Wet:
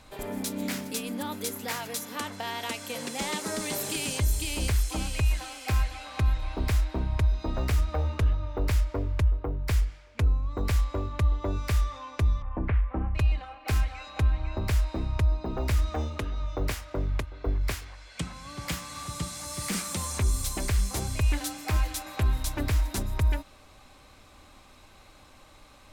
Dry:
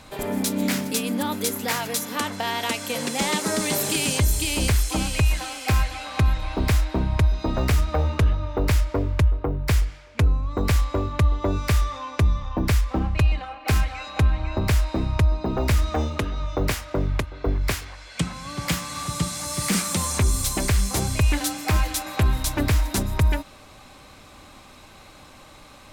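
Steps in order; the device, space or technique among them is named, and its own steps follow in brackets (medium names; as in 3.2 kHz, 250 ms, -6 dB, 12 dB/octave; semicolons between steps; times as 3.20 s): low shelf boost with a cut just above (bass shelf 70 Hz +6.5 dB; peaking EQ 160 Hz -3.5 dB 0.97 oct); 12.42–13.15 s: inverse Chebyshev low-pass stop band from 5.8 kHz, stop band 50 dB; trim -7.5 dB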